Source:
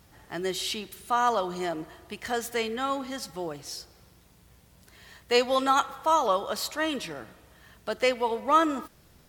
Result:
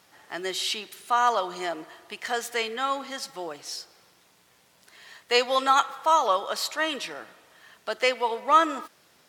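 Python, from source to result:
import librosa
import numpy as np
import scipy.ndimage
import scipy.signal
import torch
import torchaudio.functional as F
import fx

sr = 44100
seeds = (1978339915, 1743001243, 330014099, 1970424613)

y = fx.weighting(x, sr, curve='A')
y = y * 10.0 ** (2.5 / 20.0)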